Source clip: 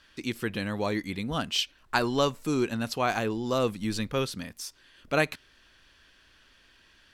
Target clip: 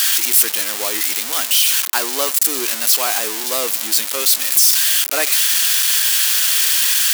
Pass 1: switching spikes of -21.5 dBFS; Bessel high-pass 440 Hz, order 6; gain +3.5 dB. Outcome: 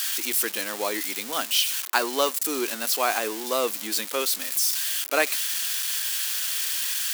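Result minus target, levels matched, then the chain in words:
switching spikes: distortion -11 dB
switching spikes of -9.5 dBFS; Bessel high-pass 440 Hz, order 6; gain +3.5 dB

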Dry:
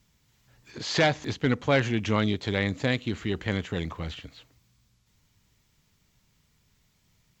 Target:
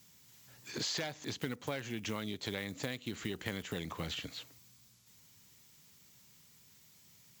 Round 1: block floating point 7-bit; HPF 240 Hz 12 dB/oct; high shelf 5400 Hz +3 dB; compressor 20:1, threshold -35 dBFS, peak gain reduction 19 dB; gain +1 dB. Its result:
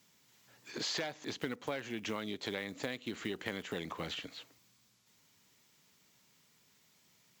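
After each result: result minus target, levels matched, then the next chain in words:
125 Hz band -5.5 dB; 8000 Hz band -2.5 dB
block floating point 7-bit; HPF 120 Hz 12 dB/oct; high shelf 5400 Hz +3 dB; compressor 20:1, threshold -35 dBFS, peak gain reduction 19.5 dB; gain +1 dB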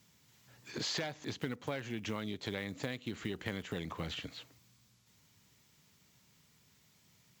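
8000 Hz band -3.0 dB
block floating point 7-bit; HPF 120 Hz 12 dB/oct; high shelf 5400 Hz +13 dB; compressor 20:1, threshold -35 dBFS, peak gain reduction 20.5 dB; gain +1 dB

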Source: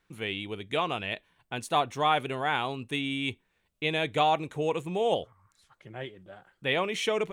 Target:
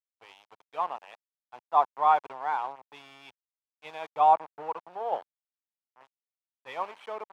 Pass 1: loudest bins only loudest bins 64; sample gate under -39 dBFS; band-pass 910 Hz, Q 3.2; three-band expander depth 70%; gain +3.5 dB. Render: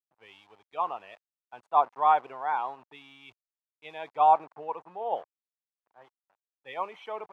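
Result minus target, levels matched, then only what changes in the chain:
sample gate: distortion -9 dB
change: sample gate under -30.5 dBFS

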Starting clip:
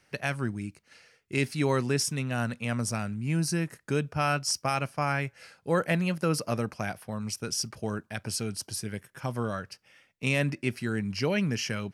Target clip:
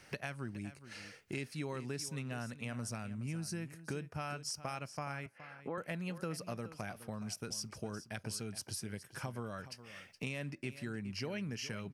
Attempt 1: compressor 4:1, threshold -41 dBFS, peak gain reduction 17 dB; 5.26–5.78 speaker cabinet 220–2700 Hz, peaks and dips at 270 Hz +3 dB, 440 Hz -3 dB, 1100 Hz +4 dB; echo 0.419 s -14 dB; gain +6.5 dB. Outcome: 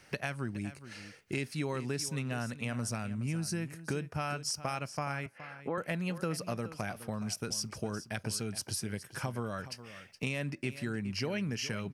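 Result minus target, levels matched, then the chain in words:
compressor: peak gain reduction -5.5 dB
compressor 4:1, threshold -48.5 dBFS, peak gain reduction 22.5 dB; 5.26–5.78 speaker cabinet 220–2700 Hz, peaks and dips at 270 Hz +3 dB, 440 Hz -3 dB, 1100 Hz +4 dB; echo 0.419 s -14 dB; gain +6.5 dB

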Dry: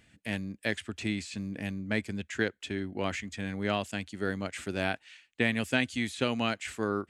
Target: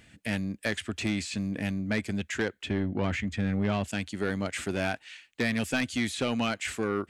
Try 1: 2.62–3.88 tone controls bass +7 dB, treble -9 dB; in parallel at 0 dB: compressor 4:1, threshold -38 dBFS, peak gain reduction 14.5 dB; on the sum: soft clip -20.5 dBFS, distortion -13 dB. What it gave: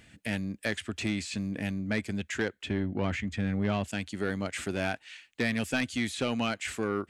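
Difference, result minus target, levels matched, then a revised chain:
compressor: peak gain reduction +6.5 dB
2.62–3.88 tone controls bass +7 dB, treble -9 dB; in parallel at 0 dB: compressor 4:1, threshold -29 dBFS, peak gain reduction 7.5 dB; on the sum: soft clip -20.5 dBFS, distortion -11 dB

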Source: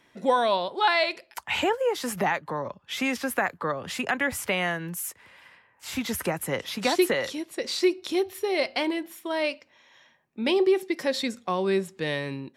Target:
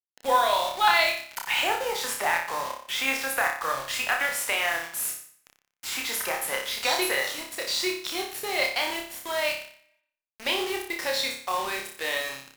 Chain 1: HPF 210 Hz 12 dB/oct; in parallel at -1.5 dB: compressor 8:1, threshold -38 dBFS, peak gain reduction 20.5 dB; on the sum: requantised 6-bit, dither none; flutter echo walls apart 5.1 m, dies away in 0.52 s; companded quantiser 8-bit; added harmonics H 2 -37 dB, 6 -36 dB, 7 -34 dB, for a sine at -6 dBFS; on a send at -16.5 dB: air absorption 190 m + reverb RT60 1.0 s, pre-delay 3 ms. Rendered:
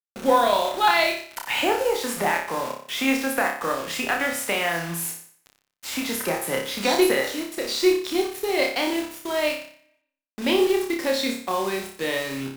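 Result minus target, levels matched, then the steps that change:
250 Hz band +11.5 dB
change: HPF 770 Hz 12 dB/oct

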